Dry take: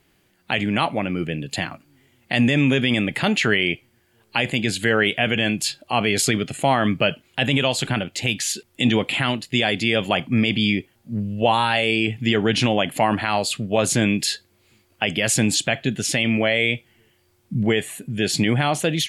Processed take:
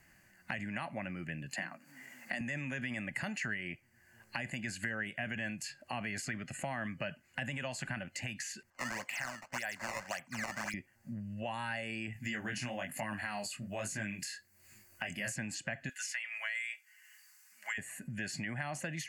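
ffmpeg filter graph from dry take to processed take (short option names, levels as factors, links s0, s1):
-filter_complex "[0:a]asettb=1/sr,asplit=3[s0][s1][s2];[s0]atrim=end=1.514[s3];[s1]atrim=start=1.51:end=2.41,asetpts=PTS-STARTPTS,afade=t=in:d=0.004:c=qsin,afade=t=out:st=0.896:d=0.004:c=qsin,highpass=f=190:w=0.5412,highpass=f=190:w=1.3066,bandreject=f=60:t=h:w=6,bandreject=f=120:t=h:w=6,bandreject=f=180:t=h:w=6,bandreject=f=240:t=h:w=6,bandreject=f=300:t=h:w=6,bandreject=f=360:t=h:w=6,bandreject=f=420:t=h:w=6,bandreject=f=480:t=h:w=6,bandreject=f=540:t=h:w=6,acompressor=mode=upward:threshold=0.00794:ratio=2.5:attack=3.2:release=140:knee=2.83:detection=peak[s4];[s2]atrim=start=2.406[s5];[s3][s4]acrossfade=d=0.004:c1=hsin:c2=qsin[s6];[s6][s5]acrossfade=d=0.004:c1=qsin:c2=hsin,asettb=1/sr,asplit=3[s7][s8][s9];[s7]atrim=end=8.704[s10];[s8]atrim=start=8.7:end=10.74,asetpts=PTS-STARTPTS,afade=t=in:d=0.004:c=qsin,afade=t=out:st=2.036:d=0.004:c=qsin,acrusher=samples=16:mix=1:aa=0.000001:lfo=1:lforange=25.6:lforate=1.8,acrossover=split=560 7800:gain=0.178 1 0.251[s11][s12][s13];[s11][s12][s13]amix=inputs=3:normalize=0[s14];[s9]atrim=start=10.736[s15];[s10][s14]acrossfade=d=0.004:c1=hsin:c2=qsin[s16];[s16][s15]acrossfade=d=0.004:c1=qsin:c2=hsin,asettb=1/sr,asplit=3[s17][s18][s19];[s17]atrim=end=12.134[s20];[s18]atrim=start=12.13:end=15.36,asetpts=PTS-STARTPTS,afade=t=in:d=0.004:c=qsin,afade=t=out:st=3.226:d=0.004:c=qsin,aemphasis=mode=production:type=50kf,flanger=delay=19:depth=5.7:speed=1.1[s21];[s19]atrim=start=15.356[s22];[s20][s21]acrossfade=d=0.004:c1=hsin:c2=qsin[s23];[s23][s22]acrossfade=d=0.004:c1=qsin:c2=hsin,asettb=1/sr,asplit=3[s24][s25][s26];[s24]atrim=end=15.894[s27];[s25]atrim=start=15.89:end=17.78,asetpts=PTS-STARTPTS,afade=t=in:d=0.004:c=qsin,afade=t=out:st=1.886:d=0.004:c=qsin,highpass=f=1100:w=0.5412,highpass=f=1100:w=1.3066,highshelf=f=2900:g=9.5,aecho=1:1:4.8:0.42,atrim=end_sample=83349[s28];[s26]atrim=start=17.776[s29];[s27][s28]acrossfade=d=0.004:c1=hsin:c2=qsin[s30];[s30][s29]acrossfade=d=0.004:c1=qsin:c2=hsin,acompressor=threshold=0.01:ratio=2,superequalizer=6b=0.501:7b=0.282:11b=2.51:13b=0.251:15b=1.58,acrossover=split=470|2000|4000[s31][s32][s33][s34];[s31]acompressor=threshold=0.0158:ratio=4[s35];[s32]acompressor=threshold=0.0158:ratio=4[s36];[s33]acompressor=threshold=0.00708:ratio=4[s37];[s34]acompressor=threshold=0.00794:ratio=4[s38];[s35][s36][s37][s38]amix=inputs=4:normalize=0,volume=0.708"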